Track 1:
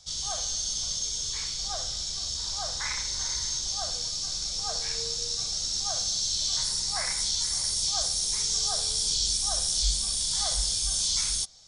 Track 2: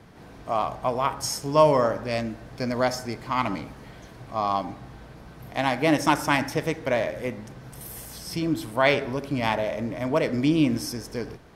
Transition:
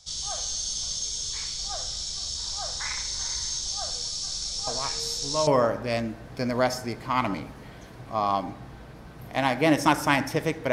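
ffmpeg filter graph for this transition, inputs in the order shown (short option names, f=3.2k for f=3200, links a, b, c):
-filter_complex "[1:a]asplit=2[a][b];[0:a]apad=whole_dur=10.72,atrim=end=10.72,atrim=end=5.472[c];[b]atrim=start=1.678:end=6.93[d];[a]atrim=start=0.88:end=1.68,asetpts=PTS-STARTPTS,volume=-9.5dB,afade=t=in:d=0.004:c=hsin,afade=t=out:st=0.796:d=0.004:c=hsin,adelay=4670[e];[c][d]acrossfade=d=0.004:c1=hsin:c2=hsin[f];[f][e]amix=inputs=2:normalize=0"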